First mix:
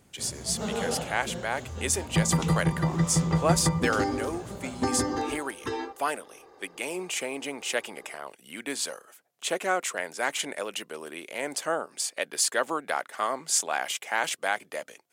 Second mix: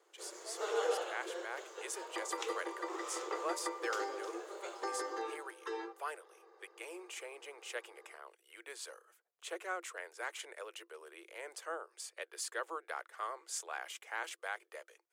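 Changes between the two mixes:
speech -10.5 dB; second sound -6.0 dB; master: add rippled Chebyshev high-pass 330 Hz, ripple 6 dB

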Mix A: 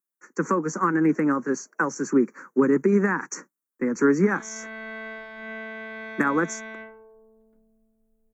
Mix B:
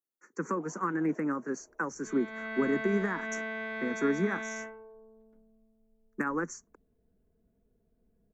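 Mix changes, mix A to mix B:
speech -9.0 dB; first sound +5.0 dB; second sound: entry -2.20 s

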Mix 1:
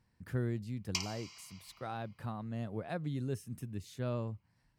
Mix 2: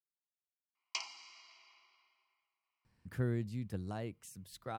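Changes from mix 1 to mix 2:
speech: entry +2.85 s; background: add air absorption 90 m

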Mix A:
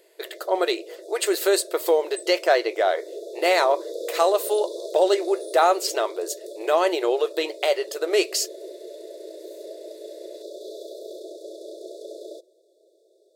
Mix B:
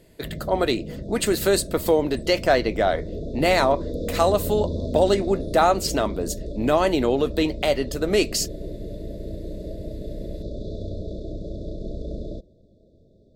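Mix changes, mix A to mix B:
background: add air absorption 140 m; master: remove brick-wall FIR high-pass 330 Hz

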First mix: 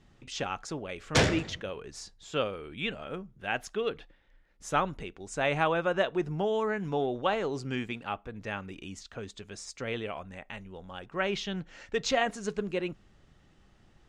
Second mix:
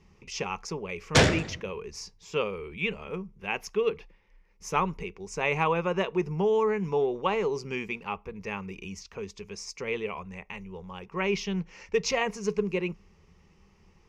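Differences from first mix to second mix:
speech: add ripple EQ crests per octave 0.81, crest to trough 12 dB; background +4.0 dB

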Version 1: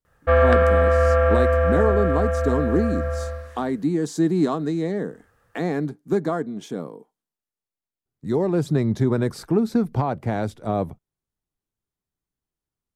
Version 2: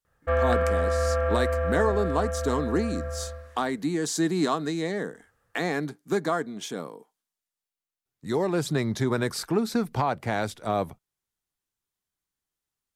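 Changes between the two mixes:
speech: add tilt shelf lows -7 dB, about 810 Hz; background -7.5 dB

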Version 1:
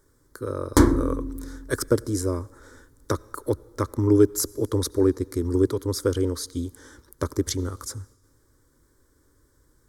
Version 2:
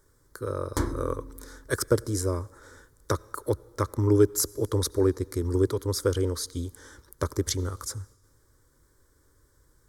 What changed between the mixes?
background -9.5 dB; master: add bell 270 Hz -6 dB 0.85 oct

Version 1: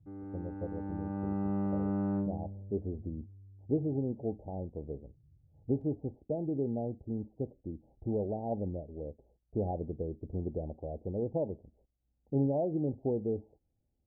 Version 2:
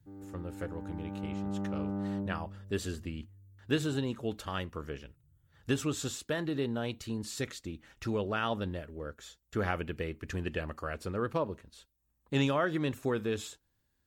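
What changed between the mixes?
speech: remove steep low-pass 820 Hz 96 dB/oct; background -3.0 dB

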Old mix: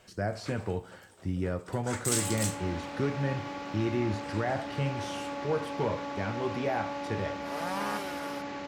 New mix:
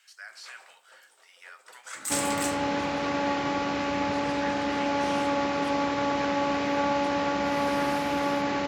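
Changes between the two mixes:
speech: add HPF 1400 Hz 24 dB/oct; first sound: add Bessel high-pass 970 Hz; second sound +10.5 dB

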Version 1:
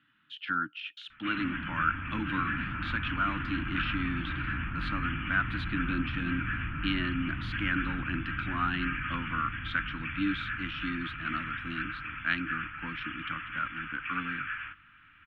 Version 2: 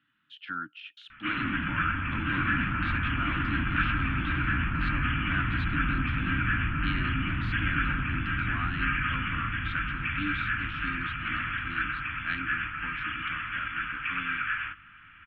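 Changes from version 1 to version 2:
speech -4.5 dB; background +6.0 dB

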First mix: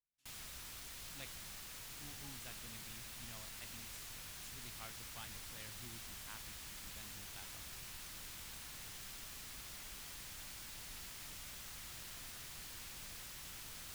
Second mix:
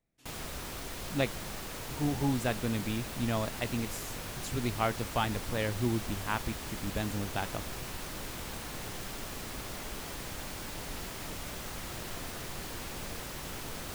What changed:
speech +9.0 dB; master: remove passive tone stack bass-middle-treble 5-5-5

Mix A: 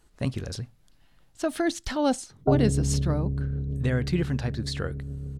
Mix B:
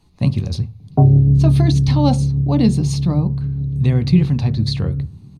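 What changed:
background: entry -1.50 s; reverb: on, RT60 0.35 s

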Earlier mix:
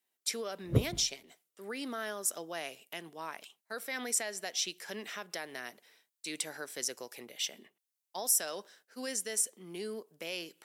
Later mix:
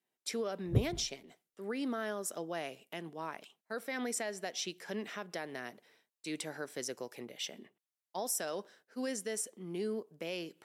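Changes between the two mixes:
background -9.0 dB; master: add tilt -2.5 dB/oct

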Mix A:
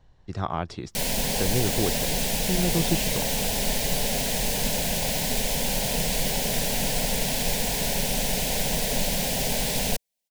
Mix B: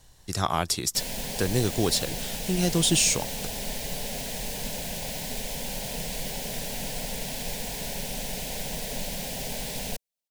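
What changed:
speech: remove tape spacing loss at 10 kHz 33 dB; background -7.5 dB

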